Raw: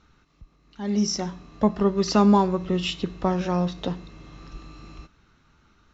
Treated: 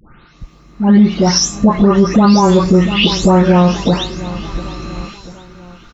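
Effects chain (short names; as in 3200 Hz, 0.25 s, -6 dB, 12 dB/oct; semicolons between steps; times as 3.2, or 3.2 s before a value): spectral delay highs late, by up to 0.409 s; on a send: feedback echo 0.692 s, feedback 47%, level -20 dB; on the sum: maximiser +19.5 dB; gain -1 dB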